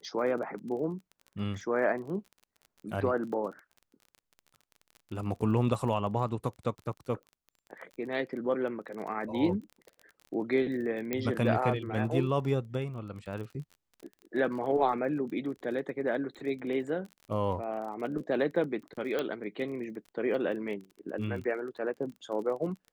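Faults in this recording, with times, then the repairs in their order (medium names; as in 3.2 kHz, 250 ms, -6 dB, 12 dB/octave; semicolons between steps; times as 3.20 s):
crackle 27 per s -40 dBFS
11.13 s: pop -16 dBFS
19.19 s: pop -18 dBFS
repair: de-click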